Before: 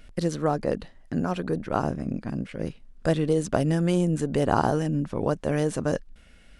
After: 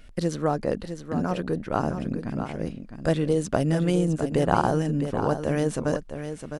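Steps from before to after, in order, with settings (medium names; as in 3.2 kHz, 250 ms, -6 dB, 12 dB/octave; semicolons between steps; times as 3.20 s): 3.85–4.67 s: transient shaper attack +2 dB, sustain -8 dB; delay 659 ms -9 dB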